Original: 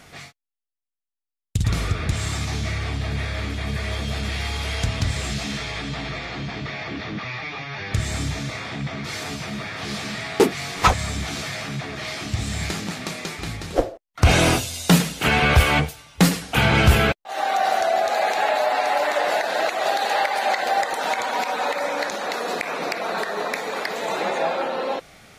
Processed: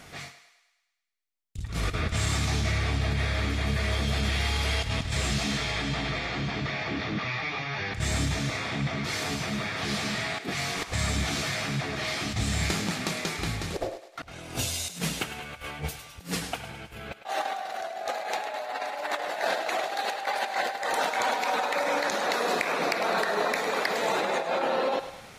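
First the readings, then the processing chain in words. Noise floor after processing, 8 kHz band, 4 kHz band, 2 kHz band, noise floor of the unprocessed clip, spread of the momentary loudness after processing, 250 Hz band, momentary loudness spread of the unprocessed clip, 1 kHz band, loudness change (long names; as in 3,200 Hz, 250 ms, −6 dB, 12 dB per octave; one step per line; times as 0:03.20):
−53 dBFS, −4.0 dB, −4.0 dB, −5.0 dB, −85 dBFS, 8 LU, −7.0 dB, 12 LU, −7.0 dB, −5.5 dB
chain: compressor whose output falls as the input rises −25 dBFS, ratio −0.5
on a send: feedback echo with a high-pass in the loop 104 ms, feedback 56%, high-pass 460 Hz, level −11 dB
on the sum: level −3.5 dB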